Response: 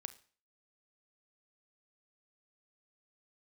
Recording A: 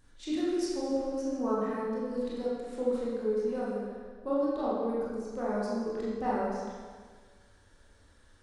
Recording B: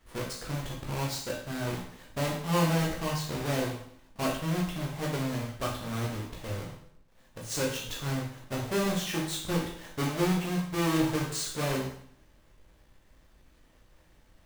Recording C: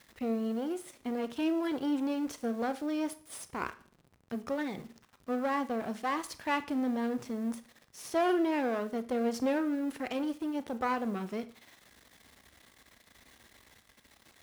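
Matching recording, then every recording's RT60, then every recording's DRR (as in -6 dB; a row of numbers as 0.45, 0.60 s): C; 1.6, 0.65, 0.45 s; -8.0, -3.0, 12.0 dB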